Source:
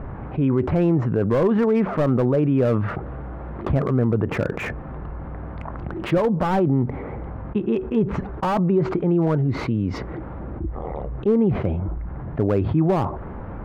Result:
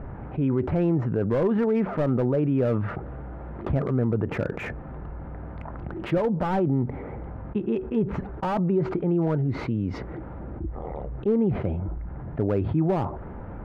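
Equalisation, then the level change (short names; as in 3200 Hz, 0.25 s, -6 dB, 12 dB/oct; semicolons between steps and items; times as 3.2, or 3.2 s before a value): high shelf 4800 Hz -7.5 dB; notch 1100 Hz, Q 12; -4.0 dB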